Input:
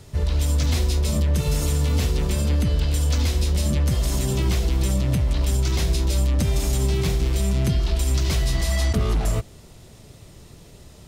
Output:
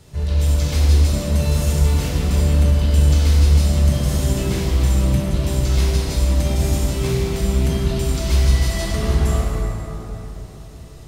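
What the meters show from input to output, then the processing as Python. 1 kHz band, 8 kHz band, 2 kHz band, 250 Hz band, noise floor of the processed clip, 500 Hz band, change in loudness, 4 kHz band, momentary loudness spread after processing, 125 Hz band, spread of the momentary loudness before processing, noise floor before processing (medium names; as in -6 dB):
+3.5 dB, +1.5 dB, +2.5 dB, +4.0 dB, -37 dBFS, +4.0 dB, +4.0 dB, +1.5 dB, 8 LU, +4.5 dB, 2 LU, -46 dBFS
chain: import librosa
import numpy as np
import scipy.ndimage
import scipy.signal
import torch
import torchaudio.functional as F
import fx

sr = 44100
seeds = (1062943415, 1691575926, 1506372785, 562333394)

y = fx.rev_plate(x, sr, seeds[0], rt60_s=3.8, hf_ratio=0.5, predelay_ms=0, drr_db=-5.5)
y = F.gain(torch.from_numpy(y), -3.5).numpy()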